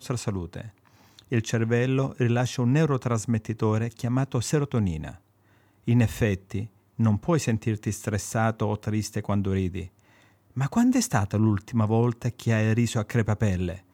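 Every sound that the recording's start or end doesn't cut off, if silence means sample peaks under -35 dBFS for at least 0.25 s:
1.19–5.14 s
5.88–6.66 s
6.99–9.86 s

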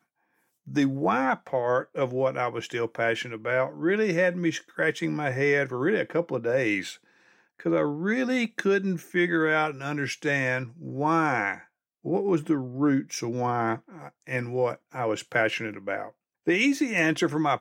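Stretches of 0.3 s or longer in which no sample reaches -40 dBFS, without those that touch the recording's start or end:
6.95–7.60 s
11.62–12.05 s
16.09–16.47 s

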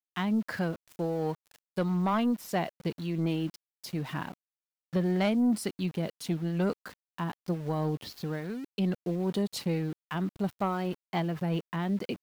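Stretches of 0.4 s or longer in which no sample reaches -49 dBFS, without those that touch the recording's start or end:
4.34–4.93 s

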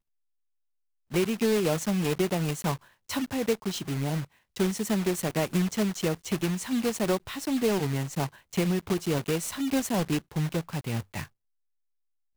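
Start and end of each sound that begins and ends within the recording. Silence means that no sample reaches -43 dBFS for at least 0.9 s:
1.11–11.26 s

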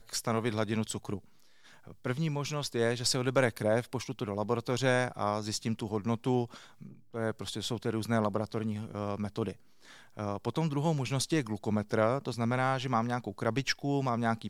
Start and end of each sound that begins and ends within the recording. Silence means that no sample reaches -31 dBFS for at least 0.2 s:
2.06–6.45 s
7.15–9.51 s

